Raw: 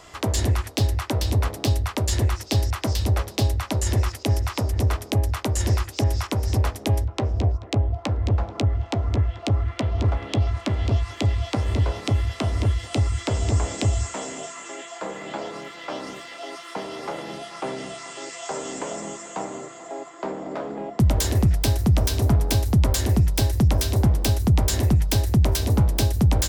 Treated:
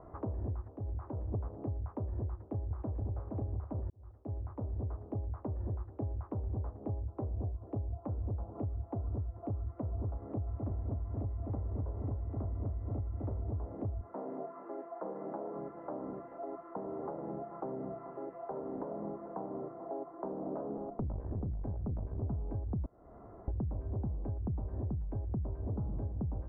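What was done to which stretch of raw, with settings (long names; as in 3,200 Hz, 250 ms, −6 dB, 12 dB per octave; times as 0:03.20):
0:00.68–0:01.34: downward compressor, threshold −31 dBFS
0:02.23–0:03.17: delay throw 470 ms, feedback 45%, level −5 dB
0:03.90–0:06.43: fade in
0:10.22–0:13.43: feedback echo at a low word length 255 ms, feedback 35%, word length 7 bits, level −4 dB
0:14.01–0:15.57: band-pass filter 200–5,900 Hz
0:20.77–0:22.23: tube saturation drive 19 dB, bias 0.8
0:22.86–0:23.48: fill with room tone
0:25.60–0:26.00: thrown reverb, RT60 1.1 s, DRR 5 dB
whole clip: downward compressor 12 to 1, threshold −32 dBFS; Bessel low-pass filter 700 Hz, order 6; level −1 dB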